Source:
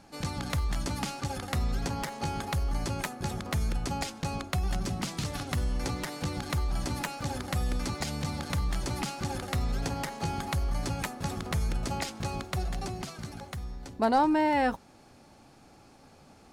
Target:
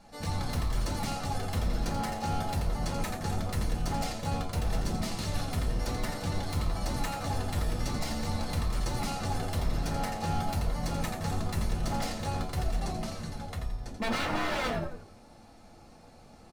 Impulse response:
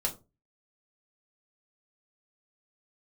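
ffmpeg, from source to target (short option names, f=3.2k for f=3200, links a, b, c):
-filter_complex "[0:a]asplit=6[a][b][c][d][e][f];[b]adelay=85,afreqshift=-89,volume=-7dB[g];[c]adelay=170,afreqshift=-178,volume=-14.1dB[h];[d]adelay=255,afreqshift=-267,volume=-21.3dB[i];[e]adelay=340,afreqshift=-356,volume=-28.4dB[j];[f]adelay=425,afreqshift=-445,volume=-35.5dB[k];[a][g][h][i][j][k]amix=inputs=6:normalize=0,aeval=exprs='0.0501*(abs(mod(val(0)/0.0501+3,4)-2)-1)':c=same[l];[1:a]atrim=start_sample=2205[m];[l][m]afir=irnorm=-1:irlink=0,volume=-5dB"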